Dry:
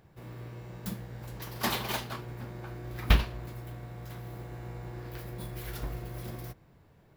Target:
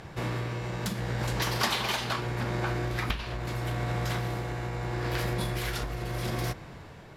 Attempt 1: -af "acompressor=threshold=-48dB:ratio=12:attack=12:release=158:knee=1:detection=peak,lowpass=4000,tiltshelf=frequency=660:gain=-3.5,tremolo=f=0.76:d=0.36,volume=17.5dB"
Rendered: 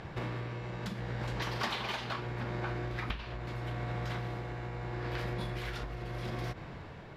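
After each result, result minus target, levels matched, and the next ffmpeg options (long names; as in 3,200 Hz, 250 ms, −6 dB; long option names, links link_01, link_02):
8,000 Hz band −8.5 dB; downward compressor: peak gain reduction +6 dB
-af "acompressor=threshold=-48dB:ratio=12:attack=12:release=158:knee=1:detection=peak,lowpass=8200,tiltshelf=frequency=660:gain=-3.5,tremolo=f=0.76:d=0.36,volume=17.5dB"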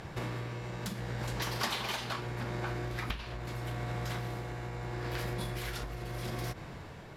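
downward compressor: peak gain reduction +6 dB
-af "acompressor=threshold=-41.5dB:ratio=12:attack=12:release=158:knee=1:detection=peak,lowpass=8200,tiltshelf=frequency=660:gain=-3.5,tremolo=f=0.76:d=0.36,volume=17.5dB"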